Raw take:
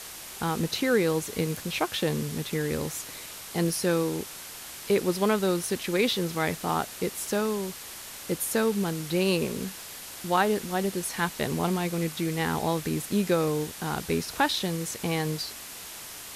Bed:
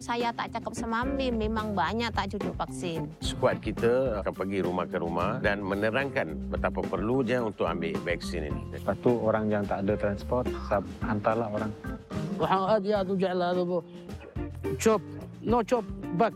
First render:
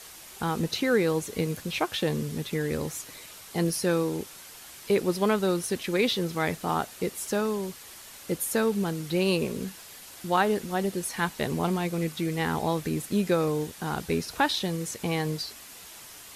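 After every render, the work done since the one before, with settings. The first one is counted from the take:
broadband denoise 6 dB, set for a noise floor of −42 dBFS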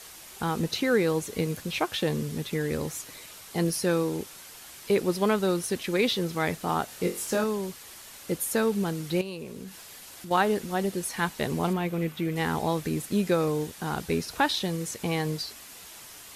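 0:06.86–0:07.44: flutter between parallel walls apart 3.9 metres, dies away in 0.26 s
0:09.21–0:10.31: downward compressor 2.5 to 1, threshold −39 dBFS
0:11.73–0:12.36: flat-topped bell 6,700 Hz −8.5 dB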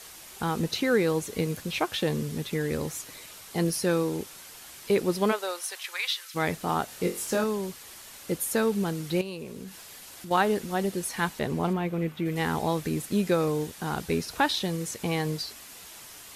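0:05.31–0:06.34: high-pass filter 440 Hz → 1,500 Hz 24 dB per octave
0:11.39–0:12.26: high-shelf EQ 3,300 Hz −7.5 dB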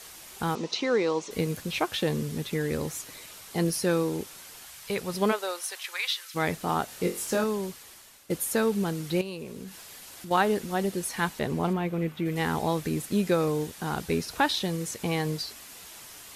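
0:00.55–0:01.31: loudspeaker in its box 290–6,500 Hz, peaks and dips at 1,000 Hz +6 dB, 1,600 Hz −7 dB, 5,700 Hz +3 dB
0:04.65–0:05.14: parametric band 310 Hz −13 dB 1.1 octaves
0:07.64–0:08.30: fade out linear, to −13 dB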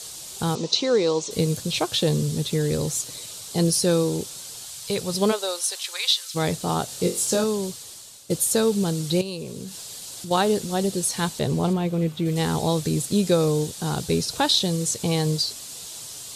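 octave-band graphic EQ 125/500/2,000/4,000/8,000 Hz +11/+5/−6/+9/+11 dB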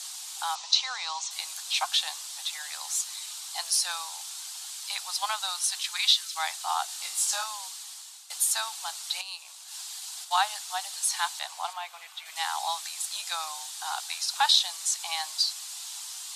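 Butterworth high-pass 750 Hz 72 dB per octave
high-shelf EQ 11,000 Hz −6.5 dB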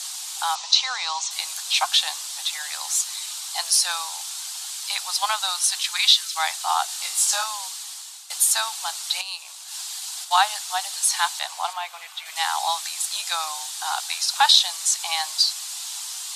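level +6.5 dB
brickwall limiter −3 dBFS, peak gain reduction 1.5 dB

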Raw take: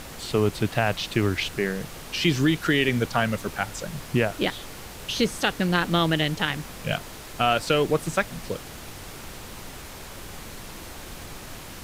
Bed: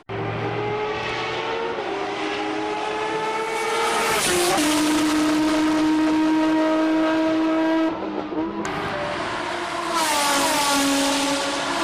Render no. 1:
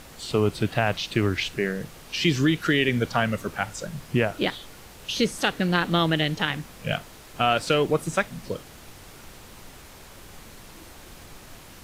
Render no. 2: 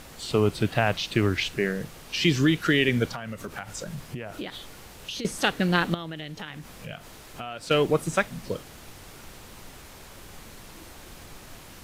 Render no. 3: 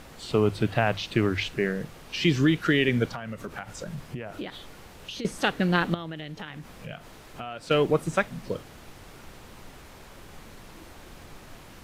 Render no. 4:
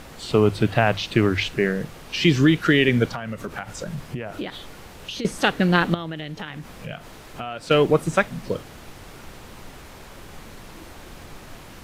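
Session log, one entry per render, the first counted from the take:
noise reduction from a noise print 6 dB
0:03.09–0:05.25: downward compressor 16 to 1, threshold −30 dBFS; 0:05.94–0:07.71: downward compressor 3 to 1, threshold −37 dBFS
high-shelf EQ 3,900 Hz −7.5 dB; mains-hum notches 50/100 Hz
level +5 dB

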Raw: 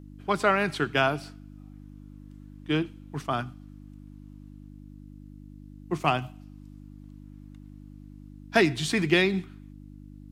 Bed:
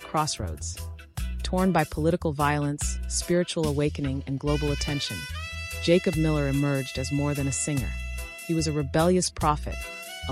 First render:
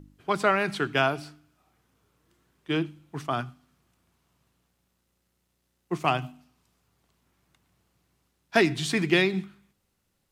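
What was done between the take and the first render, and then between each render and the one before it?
hum removal 50 Hz, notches 6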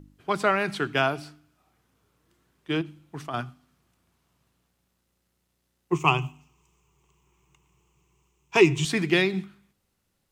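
0:02.81–0:03.34: downward compressor 2.5 to 1, threshold −32 dBFS
0:05.92–0:08.85: EQ curve with evenly spaced ripples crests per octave 0.72, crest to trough 15 dB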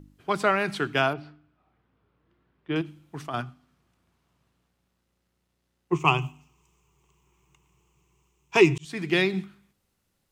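0:01.13–0:02.76: high-frequency loss of the air 340 metres
0:03.42–0:06.05: high-shelf EQ 6,200 Hz −8.5 dB
0:08.78–0:09.23: fade in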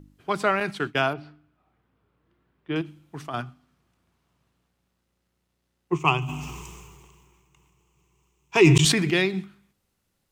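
0:00.60–0:01.01: downward expander −32 dBFS
0:06.20–0:09.26: level that may fall only so fast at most 29 dB per second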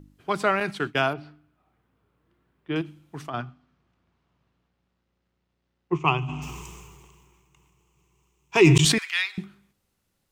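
0:03.30–0:06.42: high-frequency loss of the air 130 metres
0:08.98–0:09.38: inverse Chebyshev high-pass filter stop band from 190 Hz, stop band 80 dB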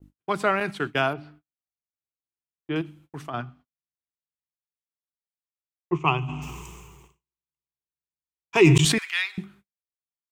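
noise gate −51 dBFS, range −41 dB
parametric band 5,100 Hz −3.5 dB 0.87 octaves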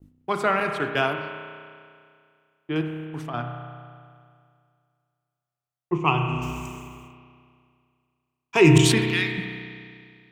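spring reverb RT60 2.2 s, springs 32 ms, chirp 75 ms, DRR 4 dB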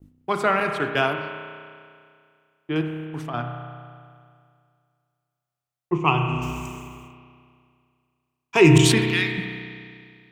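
level +1.5 dB
brickwall limiter −3 dBFS, peak gain reduction 1.5 dB

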